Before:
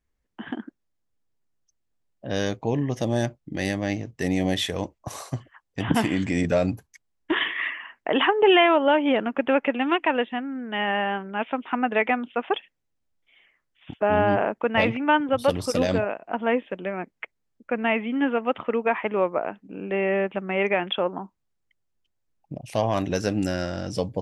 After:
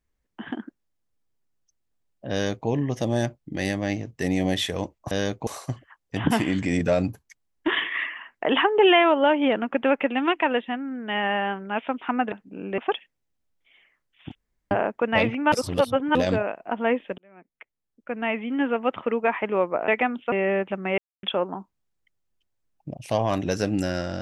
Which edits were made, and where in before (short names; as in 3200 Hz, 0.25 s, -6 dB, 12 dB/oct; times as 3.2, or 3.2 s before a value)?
2.32–2.68 copy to 5.11
11.96–12.4 swap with 19.5–19.96
13.97–14.33 room tone
15.14–15.77 reverse
16.8–18.4 fade in
20.62–20.87 mute